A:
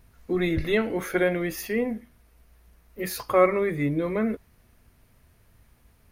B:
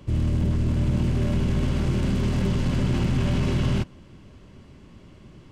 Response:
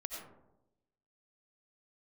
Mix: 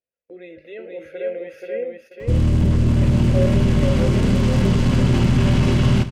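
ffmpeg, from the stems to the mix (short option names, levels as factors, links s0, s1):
-filter_complex "[0:a]bandreject=f=1800:w=5.5,alimiter=limit=0.15:level=0:latency=1:release=72,asplit=3[s0][s1][s2];[s0]bandpass=f=530:t=q:w=8,volume=1[s3];[s1]bandpass=f=1840:t=q:w=8,volume=0.501[s4];[s2]bandpass=f=2480:t=q:w=8,volume=0.355[s5];[s3][s4][s5]amix=inputs=3:normalize=0,volume=1,asplit=2[s6][s7];[s7]volume=0.668[s8];[1:a]adelay=2200,volume=1.12,asplit=2[s9][s10];[s10]volume=0.224[s11];[s8][s11]amix=inputs=2:normalize=0,aecho=0:1:480|960|1440|1920:1|0.29|0.0841|0.0244[s12];[s6][s9][s12]amix=inputs=3:normalize=0,agate=range=0.126:threshold=0.00282:ratio=16:detection=peak,dynaudnorm=f=290:g=7:m=1.88"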